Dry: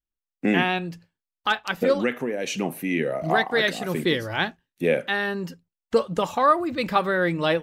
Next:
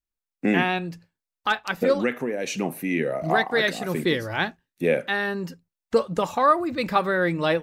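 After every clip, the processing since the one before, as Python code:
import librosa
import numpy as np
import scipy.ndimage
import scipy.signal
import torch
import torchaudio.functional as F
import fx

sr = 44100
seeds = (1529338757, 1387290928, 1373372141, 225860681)

y = fx.peak_eq(x, sr, hz=3100.0, db=-5.0, octaves=0.24)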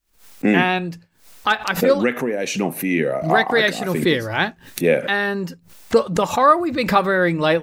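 y = fx.pre_swell(x, sr, db_per_s=140.0)
y = F.gain(torch.from_numpy(y), 5.0).numpy()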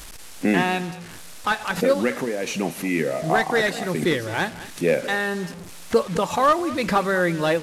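y = fx.delta_mod(x, sr, bps=64000, step_db=-29.0)
y = y + 10.0 ** (-17.0 / 20.0) * np.pad(y, (int(208 * sr / 1000.0), 0))[:len(y)]
y = F.gain(torch.from_numpy(y), -3.5).numpy()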